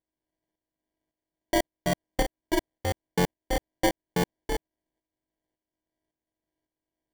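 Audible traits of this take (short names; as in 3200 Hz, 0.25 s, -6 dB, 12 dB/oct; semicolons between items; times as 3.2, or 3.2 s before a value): a buzz of ramps at a fixed pitch in blocks of 8 samples; tremolo saw up 1.8 Hz, depth 60%; aliases and images of a low sample rate 1300 Hz, jitter 0%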